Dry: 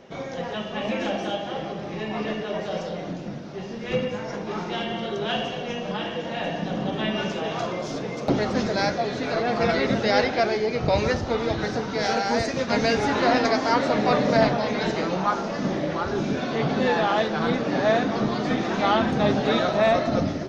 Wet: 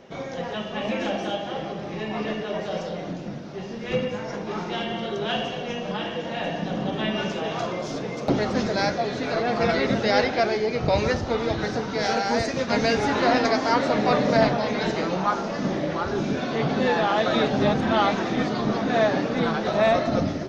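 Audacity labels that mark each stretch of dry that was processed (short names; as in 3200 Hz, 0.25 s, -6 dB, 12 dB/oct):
17.260000	19.670000	reverse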